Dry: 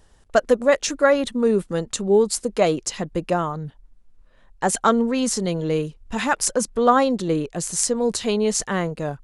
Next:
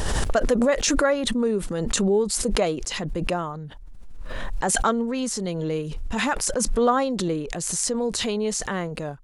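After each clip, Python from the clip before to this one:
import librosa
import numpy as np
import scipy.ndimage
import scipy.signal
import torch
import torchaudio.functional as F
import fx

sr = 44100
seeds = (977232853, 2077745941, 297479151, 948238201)

y = fx.pre_swell(x, sr, db_per_s=21.0)
y = F.gain(torch.from_numpy(y), -5.0).numpy()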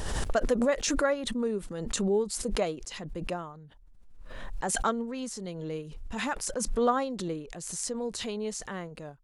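y = fx.upward_expand(x, sr, threshold_db=-36.0, expansion=1.5)
y = F.gain(torch.from_numpy(y), -4.5).numpy()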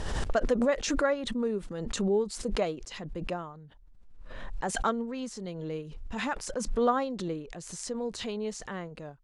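y = fx.air_absorb(x, sr, metres=60.0)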